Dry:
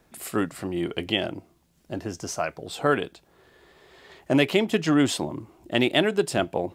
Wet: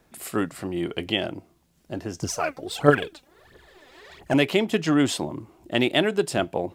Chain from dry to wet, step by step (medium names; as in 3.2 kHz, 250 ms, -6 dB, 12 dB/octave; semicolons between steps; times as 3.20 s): 2.22–4.34 s: phaser 1.5 Hz, delay 4.1 ms, feedback 72%